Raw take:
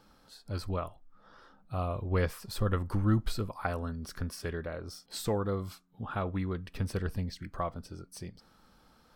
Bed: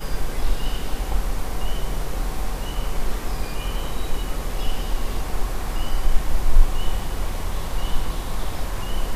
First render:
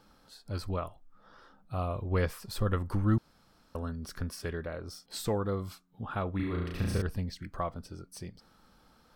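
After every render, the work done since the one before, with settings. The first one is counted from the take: 3.18–3.75 room tone; 6.36–7.02 flutter echo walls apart 6 m, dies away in 1.1 s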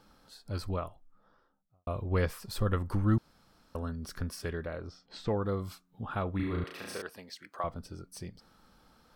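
0.63–1.87 studio fade out; 4.87–5.42 air absorption 180 m; 6.64–7.64 HPF 490 Hz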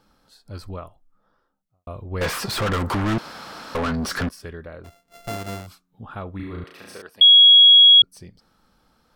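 2.21–4.29 overdrive pedal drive 38 dB, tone 3300 Hz, clips at -15.5 dBFS; 4.84–5.67 sample sorter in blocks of 64 samples; 7.21–8.02 bleep 3320 Hz -7 dBFS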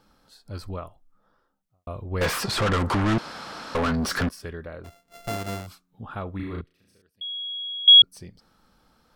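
2.43–3.77 LPF 10000 Hz; 6.61–7.88 passive tone stack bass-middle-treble 10-0-1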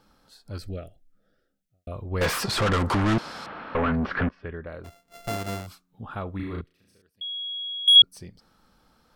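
0.58–1.92 Butterworth band-stop 1000 Hz, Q 1.1; 3.46–4.67 LPF 2700 Hz 24 dB/oct; 7.24–7.96 overdrive pedal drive 9 dB, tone 2000 Hz, clips at -6.5 dBFS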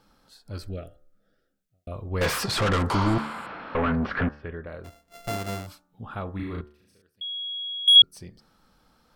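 2.95–3.56 spectral repair 790–6900 Hz both; de-hum 73.43 Hz, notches 25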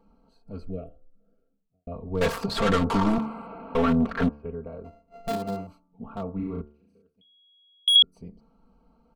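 Wiener smoothing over 25 samples; comb 4.4 ms, depth 91%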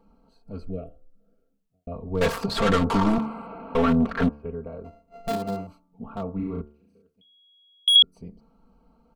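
gain +1.5 dB

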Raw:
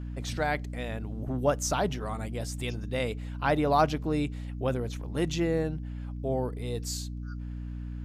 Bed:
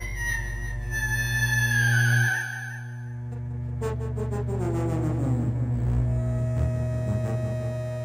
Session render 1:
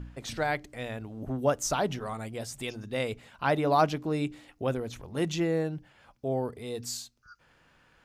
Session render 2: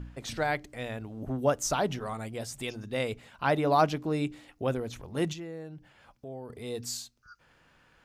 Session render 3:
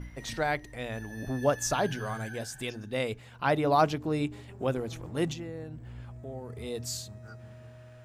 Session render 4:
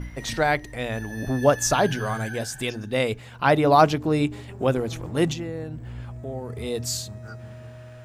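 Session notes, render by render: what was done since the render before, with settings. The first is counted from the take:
de-hum 60 Hz, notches 5
5.33–6.5 compressor 2:1, threshold -47 dBFS
add bed -20 dB
gain +7.5 dB

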